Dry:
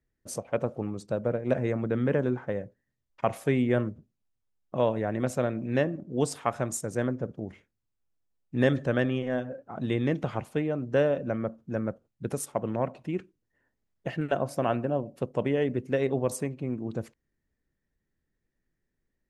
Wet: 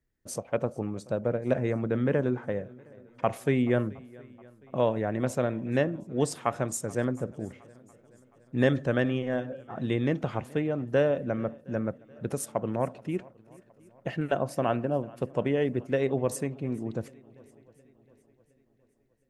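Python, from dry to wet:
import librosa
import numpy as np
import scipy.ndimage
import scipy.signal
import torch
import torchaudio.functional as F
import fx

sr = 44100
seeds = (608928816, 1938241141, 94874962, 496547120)

y = fx.echo_swing(x, sr, ms=715, ratio=1.5, feedback_pct=42, wet_db=-23.5)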